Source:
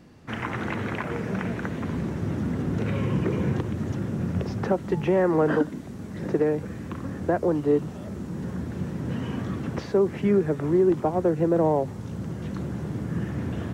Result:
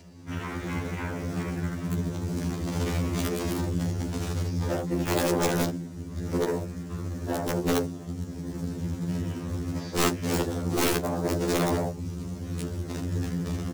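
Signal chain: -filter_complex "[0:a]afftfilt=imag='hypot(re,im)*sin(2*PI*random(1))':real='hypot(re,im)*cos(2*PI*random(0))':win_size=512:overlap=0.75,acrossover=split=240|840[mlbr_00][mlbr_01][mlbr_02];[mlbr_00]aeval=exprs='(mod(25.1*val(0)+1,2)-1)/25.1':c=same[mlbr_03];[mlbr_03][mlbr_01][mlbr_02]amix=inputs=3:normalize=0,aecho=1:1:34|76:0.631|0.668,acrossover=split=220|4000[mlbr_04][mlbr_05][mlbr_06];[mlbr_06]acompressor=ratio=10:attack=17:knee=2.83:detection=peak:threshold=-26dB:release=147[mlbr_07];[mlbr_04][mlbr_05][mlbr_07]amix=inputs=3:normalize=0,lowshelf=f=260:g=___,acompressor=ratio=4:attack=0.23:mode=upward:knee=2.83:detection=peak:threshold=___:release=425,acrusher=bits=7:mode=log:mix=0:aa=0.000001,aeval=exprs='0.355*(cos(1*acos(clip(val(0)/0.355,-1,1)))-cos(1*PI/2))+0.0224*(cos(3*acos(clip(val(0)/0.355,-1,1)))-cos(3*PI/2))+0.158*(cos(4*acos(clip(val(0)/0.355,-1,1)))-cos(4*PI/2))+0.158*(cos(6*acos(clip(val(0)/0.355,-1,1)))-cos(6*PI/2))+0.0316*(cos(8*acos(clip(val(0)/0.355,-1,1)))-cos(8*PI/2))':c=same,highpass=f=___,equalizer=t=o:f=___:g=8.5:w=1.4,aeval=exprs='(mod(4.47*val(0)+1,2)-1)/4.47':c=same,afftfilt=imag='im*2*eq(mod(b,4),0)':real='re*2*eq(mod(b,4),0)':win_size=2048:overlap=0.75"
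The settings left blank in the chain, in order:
9.5, -36dB, 44, 6200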